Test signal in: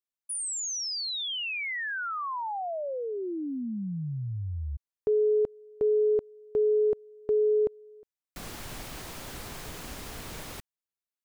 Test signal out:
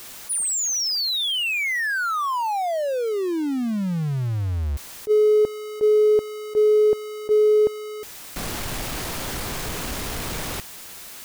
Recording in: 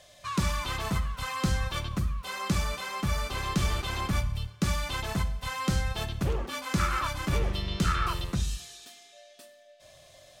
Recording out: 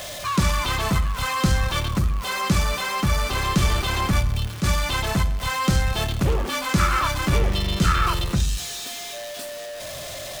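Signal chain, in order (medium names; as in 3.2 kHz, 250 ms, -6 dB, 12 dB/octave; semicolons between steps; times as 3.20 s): jump at every zero crossing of -36 dBFS; attacks held to a fixed rise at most 440 dB/s; trim +6.5 dB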